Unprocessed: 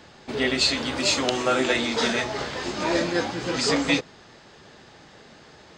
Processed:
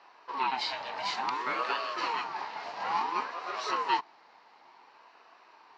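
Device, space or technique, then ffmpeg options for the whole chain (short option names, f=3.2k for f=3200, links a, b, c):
voice changer toy: -af "aeval=exprs='val(0)*sin(2*PI*620*n/s+620*0.45/0.57*sin(2*PI*0.57*n/s))':c=same,highpass=520,equalizer=f=550:t=q:w=4:g=-7,equalizer=f=920:t=q:w=4:g=8,equalizer=f=1.4k:t=q:w=4:g=-4,equalizer=f=2.3k:t=q:w=4:g=-3,equalizer=f=3.4k:t=q:w=4:g=-10,lowpass=f=4.3k:w=0.5412,lowpass=f=4.3k:w=1.3066,volume=-3.5dB"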